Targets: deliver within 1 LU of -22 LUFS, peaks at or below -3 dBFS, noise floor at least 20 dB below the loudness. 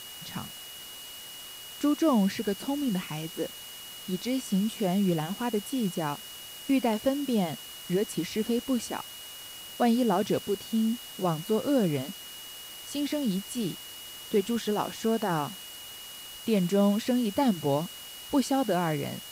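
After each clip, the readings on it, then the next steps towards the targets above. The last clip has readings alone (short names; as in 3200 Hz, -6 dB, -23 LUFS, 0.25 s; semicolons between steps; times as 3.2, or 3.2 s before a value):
steady tone 2900 Hz; tone level -44 dBFS; noise floor -44 dBFS; noise floor target -49 dBFS; loudness -29.0 LUFS; peak -13.0 dBFS; loudness target -22.0 LUFS
-> notch 2900 Hz, Q 30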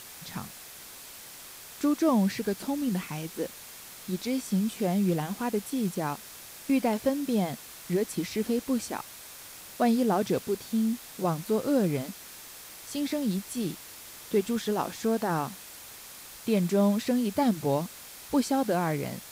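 steady tone none; noise floor -46 dBFS; noise floor target -49 dBFS
-> denoiser 6 dB, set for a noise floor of -46 dBFS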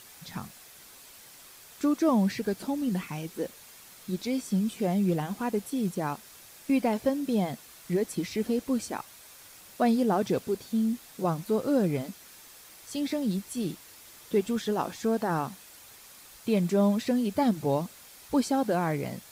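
noise floor -51 dBFS; loudness -29.0 LUFS; peak -13.5 dBFS; loudness target -22.0 LUFS
-> gain +7 dB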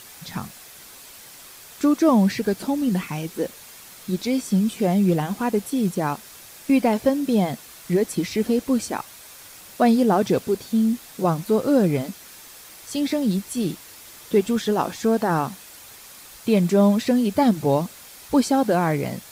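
loudness -22.0 LUFS; peak -6.5 dBFS; noise floor -44 dBFS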